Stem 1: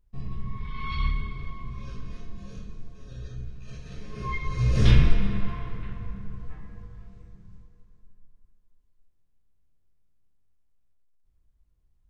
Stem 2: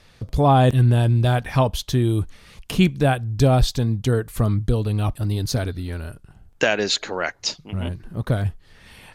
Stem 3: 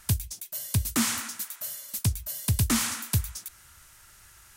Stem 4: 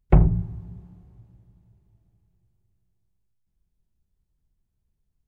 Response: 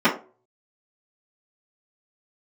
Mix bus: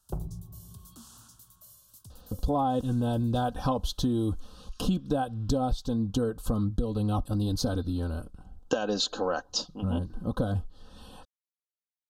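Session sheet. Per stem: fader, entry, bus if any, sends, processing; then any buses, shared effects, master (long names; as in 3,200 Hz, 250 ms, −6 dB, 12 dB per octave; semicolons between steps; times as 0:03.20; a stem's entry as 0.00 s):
−16.0 dB, 0.00 s, no send, Butterworth high-pass 1,200 Hz 48 dB per octave; downward compressor, threshold −41 dBFS, peak gain reduction 12 dB
−1.0 dB, 2.10 s, no send, high-shelf EQ 5,200 Hz −9 dB; comb filter 3.9 ms, depth 65%
−17.0 dB, 0.00 s, no send, brickwall limiter −25 dBFS, peak gain reduction 9 dB
−10.0 dB, 0.00 s, no send, downward compressor 2 to 1, threshold −28 dBFS, peak gain reduction 11 dB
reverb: not used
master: Butterworth band-reject 2,100 Hz, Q 1.1; downward compressor 12 to 1, threshold −23 dBFS, peak gain reduction 14.5 dB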